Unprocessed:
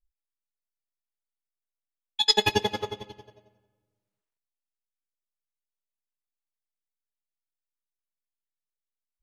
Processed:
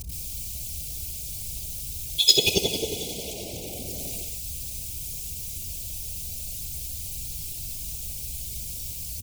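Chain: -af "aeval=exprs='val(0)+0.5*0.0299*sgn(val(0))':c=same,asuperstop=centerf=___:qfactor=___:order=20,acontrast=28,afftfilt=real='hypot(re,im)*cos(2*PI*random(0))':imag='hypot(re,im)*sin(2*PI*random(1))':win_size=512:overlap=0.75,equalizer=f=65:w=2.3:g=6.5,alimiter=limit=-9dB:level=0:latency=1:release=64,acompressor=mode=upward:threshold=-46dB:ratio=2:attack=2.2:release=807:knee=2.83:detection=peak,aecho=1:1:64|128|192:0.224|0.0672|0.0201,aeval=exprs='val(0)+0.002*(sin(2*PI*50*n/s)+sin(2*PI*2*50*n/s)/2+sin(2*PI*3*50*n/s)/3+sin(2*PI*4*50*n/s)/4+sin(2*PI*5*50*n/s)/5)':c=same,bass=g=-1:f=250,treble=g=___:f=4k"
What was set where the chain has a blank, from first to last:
1300, 0.89, 11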